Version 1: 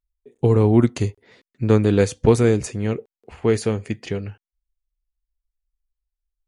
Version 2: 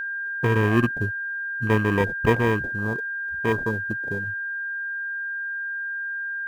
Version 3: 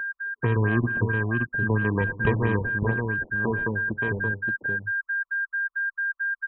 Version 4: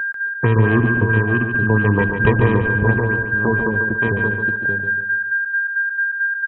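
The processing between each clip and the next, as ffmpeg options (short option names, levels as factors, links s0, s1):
-af "acrusher=samples=31:mix=1:aa=0.000001,afwtdn=0.0501,aeval=exprs='val(0)+0.0794*sin(2*PI*1600*n/s)':c=same,volume=0.562"
-filter_complex "[0:a]acrossover=split=190[s0][s1];[s1]acompressor=threshold=0.0631:ratio=6[s2];[s0][s2]amix=inputs=2:normalize=0,asplit=2[s3][s4];[s4]aecho=0:1:118|216|575:0.141|0.119|0.631[s5];[s3][s5]amix=inputs=2:normalize=0,afftfilt=real='re*lt(b*sr/1024,990*pow(4100/990,0.5+0.5*sin(2*PI*4.5*pts/sr)))':imag='im*lt(b*sr/1024,990*pow(4100/990,0.5+0.5*sin(2*PI*4.5*pts/sr)))':win_size=1024:overlap=0.75"
-af "aecho=1:1:143|286|429|572|715:0.473|0.194|0.0795|0.0326|0.0134,volume=2.37"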